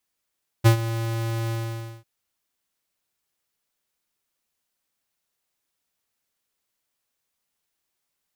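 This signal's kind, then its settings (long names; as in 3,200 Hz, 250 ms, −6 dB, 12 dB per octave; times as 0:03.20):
note with an ADSR envelope square 114 Hz, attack 23 ms, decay 99 ms, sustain −14.5 dB, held 0.86 s, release 537 ms −12 dBFS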